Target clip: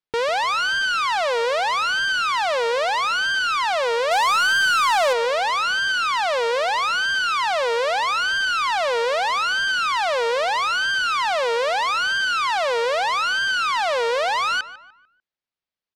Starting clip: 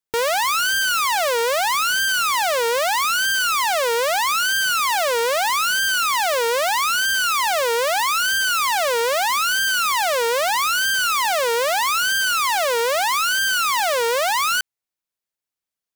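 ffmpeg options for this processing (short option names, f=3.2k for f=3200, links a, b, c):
-filter_complex "[0:a]lowpass=f=4.8k:w=0.5412,lowpass=f=4.8k:w=1.3066,asettb=1/sr,asplit=3[a][b][c];[a]atrim=end=4.114[d];[b]atrim=start=4.11:end=5.13,asetpts=PTS-STARTPTS,afade=t=in:d=0.004:c=qsin,afade=t=out:st=1.016:d=0.004:c=qsin,acontrast=34[e];[c]atrim=start=5.126[f];[d][e]acrossfade=d=0.004:c1=hsin:c2=qsin[g];[g][f]acrossfade=d=0.004:c1=qsin:c2=hsin,asoftclip=type=tanh:threshold=-14dB,asplit=2[h][i];[i]adelay=148,lowpass=f=2.6k:p=1,volume=-15dB,asplit=2[j][k];[k]adelay=148,lowpass=f=2.6k:p=1,volume=0.42,asplit=2[l][m];[m]adelay=148,lowpass=f=2.6k:p=1,volume=0.42,asplit=2[n][o];[o]adelay=148,lowpass=f=2.6k:p=1,volume=0.42[p];[j][l][n][p]amix=inputs=4:normalize=0[q];[h][q]amix=inputs=2:normalize=0"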